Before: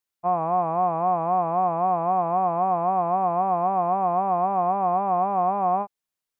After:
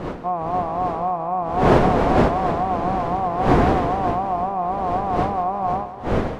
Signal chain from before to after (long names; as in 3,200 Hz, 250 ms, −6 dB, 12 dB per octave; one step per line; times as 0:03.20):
wind on the microphone 580 Hz −22 dBFS
echo with a time of its own for lows and highs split 460 Hz, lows 80 ms, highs 180 ms, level −12.5 dB
level −1 dB